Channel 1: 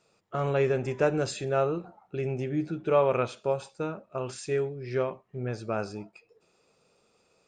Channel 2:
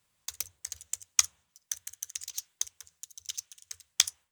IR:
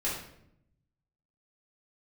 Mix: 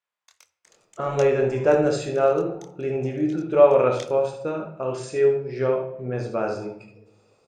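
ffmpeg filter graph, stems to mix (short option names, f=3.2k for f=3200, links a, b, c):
-filter_complex "[0:a]adelay=650,volume=-4dB,asplit=3[a][b][c];[b]volume=-5dB[d];[c]volume=-5.5dB[e];[1:a]flanger=delay=22.5:depth=5:speed=2.4,bandpass=f=1.6k:t=q:w=0.76:csg=0,volume=-7dB,asplit=2[f][g];[g]volume=-21dB[h];[2:a]atrim=start_sample=2205[i];[d][h]amix=inputs=2:normalize=0[j];[j][i]afir=irnorm=-1:irlink=0[k];[e]aecho=0:1:72:1[l];[a][f][k][l]amix=inputs=4:normalize=0,equalizer=f=590:w=0.62:g=5.5"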